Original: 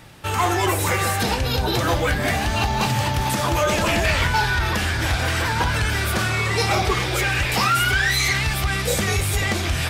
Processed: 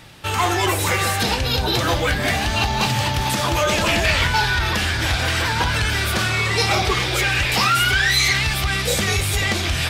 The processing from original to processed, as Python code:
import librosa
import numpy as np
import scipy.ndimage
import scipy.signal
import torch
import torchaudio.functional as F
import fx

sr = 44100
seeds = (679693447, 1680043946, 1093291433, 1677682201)

y = fx.peak_eq(x, sr, hz=3700.0, db=5.0, octaves=1.6)